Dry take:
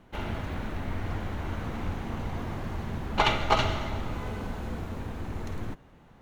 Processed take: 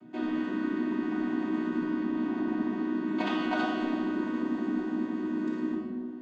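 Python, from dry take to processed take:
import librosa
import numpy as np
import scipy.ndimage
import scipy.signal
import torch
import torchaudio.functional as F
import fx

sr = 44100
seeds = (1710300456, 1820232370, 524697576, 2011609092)

p1 = fx.chord_vocoder(x, sr, chord='major triad', root=59)
p2 = fx.bessel_lowpass(p1, sr, hz=5600.0, order=2, at=(1.83, 3.08))
p3 = fx.over_compress(p2, sr, threshold_db=-36.0, ratio=-0.5)
p4 = p2 + (p3 * librosa.db_to_amplitude(-0.5))
p5 = fx.bass_treble(p4, sr, bass_db=13, treble_db=3)
p6 = fx.room_shoebox(p5, sr, seeds[0], volume_m3=1300.0, walls='mixed', distance_m=2.8)
y = p6 * librosa.db_to_amplitude(-9.0)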